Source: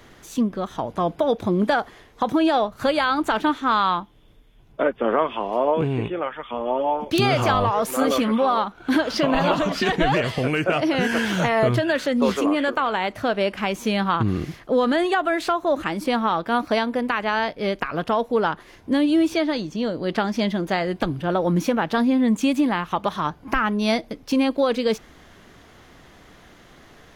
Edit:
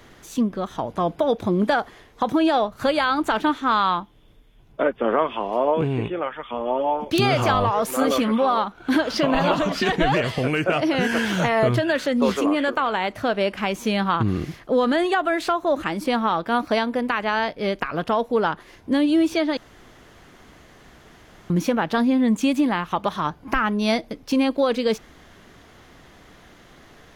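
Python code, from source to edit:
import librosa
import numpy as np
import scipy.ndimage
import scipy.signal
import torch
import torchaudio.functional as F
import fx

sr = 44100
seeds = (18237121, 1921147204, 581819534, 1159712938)

y = fx.edit(x, sr, fx.room_tone_fill(start_s=19.57, length_s=1.93), tone=tone)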